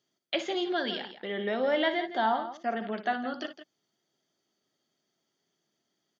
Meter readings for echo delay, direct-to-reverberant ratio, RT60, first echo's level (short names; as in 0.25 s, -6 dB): 59 ms, none, none, -11.5 dB